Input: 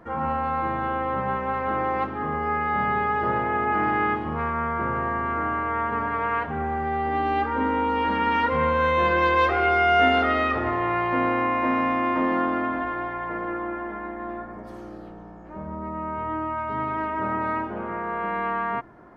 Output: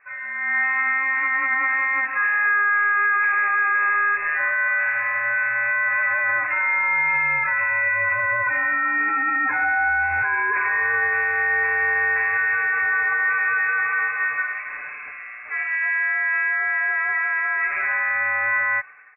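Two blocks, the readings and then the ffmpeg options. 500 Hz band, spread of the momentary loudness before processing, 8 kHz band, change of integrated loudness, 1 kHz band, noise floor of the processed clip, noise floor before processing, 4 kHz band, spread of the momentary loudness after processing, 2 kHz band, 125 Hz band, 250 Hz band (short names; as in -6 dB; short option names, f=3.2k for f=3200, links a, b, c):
-11.0 dB, 13 LU, n/a, +5.0 dB, -3.5 dB, -35 dBFS, -40 dBFS, under -25 dB, 4 LU, +12.5 dB, under -10 dB, -17.5 dB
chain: -af "acompressor=threshold=-28dB:ratio=12,highpass=1.1k,aecho=1:1:6.5:0.83,dynaudnorm=f=110:g=9:m=15.5dB,alimiter=limit=-14dB:level=0:latency=1:release=18,lowpass=f=2.5k:t=q:w=0.5098,lowpass=f=2.5k:t=q:w=0.6013,lowpass=f=2.5k:t=q:w=0.9,lowpass=f=2.5k:t=q:w=2.563,afreqshift=-2900"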